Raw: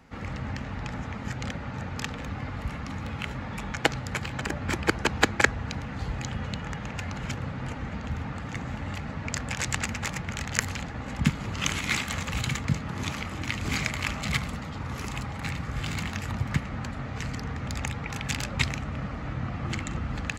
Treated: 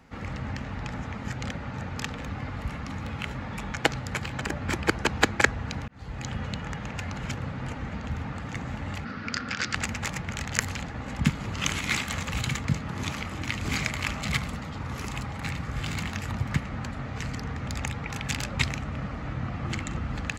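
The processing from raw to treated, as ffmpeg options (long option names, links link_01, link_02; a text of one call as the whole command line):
ffmpeg -i in.wav -filter_complex "[0:a]asplit=3[link_01][link_02][link_03];[link_01]afade=type=out:start_time=9.04:duration=0.02[link_04];[link_02]highpass=120,equalizer=frequency=140:width_type=q:width=4:gain=-8,equalizer=frequency=230:width_type=q:width=4:gain=4,equalizer=frequency=640:width_type=q:width=4:gain=-6,equalizer=frequency=920:width_type=q:width=4:gain=-8,equalizer=frequency=1400:width_type=q:width=4:gain=10,equalizer=frequency=4800:width_type=q:width=4:gain=7,lowpass=frequency=5900:width=0.5412,lowpass=frequency=5900:width=1.3066,afade=type=in:start_time=9.04:duration=0.02,afade=type=out:start_time=9.74:duration=0.02[link_05];[link_03]afade=type=in:start_time=9.74:duration=0.02[link_06];[link_04][link_05][link_06]amix=inputs=3:normalize=0,asplit=2[link_07][link_08];[link_07]atrim=end=5.88,asetpts=PTS-STARTPTS,afade=type=out:start_time=5.876:duration=0.004:curve=hsin[link_09];[link_08]atrim=start=5.88,asetpts=PTS-STARTPTS,afade=type=in:duration=0.42[link_10];[link_09][link_10]concat=n=2:v=0:a=1" out.wav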